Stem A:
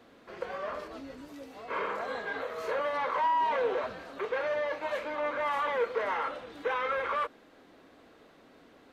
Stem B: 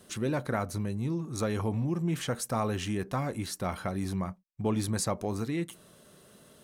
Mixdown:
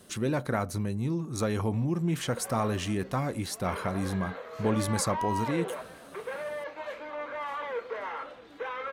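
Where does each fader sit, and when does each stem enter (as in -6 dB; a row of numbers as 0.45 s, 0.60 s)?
-5.0 dB, +1.5 dB; 1.95 s, 0.00 s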